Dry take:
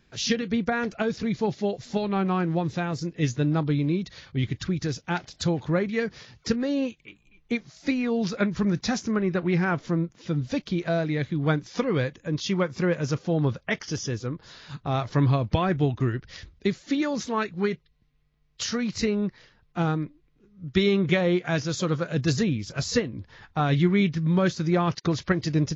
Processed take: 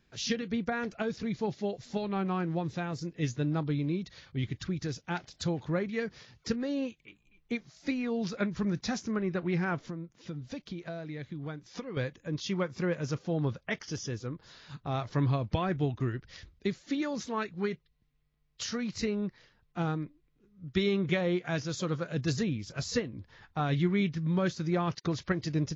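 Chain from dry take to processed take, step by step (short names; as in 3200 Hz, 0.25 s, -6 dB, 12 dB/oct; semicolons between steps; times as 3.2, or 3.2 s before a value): 9.85–11.97 compressor 6:1, threshold -30 dBFS, peak gain reduction 11.5 dB; gain -6.5 dB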